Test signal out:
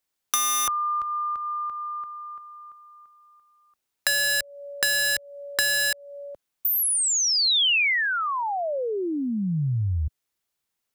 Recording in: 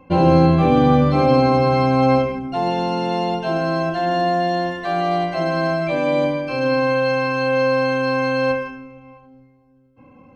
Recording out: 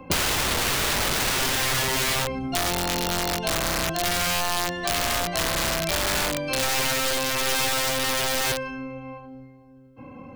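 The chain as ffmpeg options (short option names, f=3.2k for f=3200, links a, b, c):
-filter_complex "[0:a]aeval=exprs='(mod(5.31*val(0)+1,2)-1)/5.31':c=same,acrossover=split=97|2800[a][b][c];[a]acompressor=threshold=-38dB:ratio=4[d];[b]acompressor=threshold=-34dB:ratio=4[e];[c]acompressor=threshold=-29dB:ratio=4[f];[d][e][f]amix=inputs=3:normalize=0,volume=5.5dB"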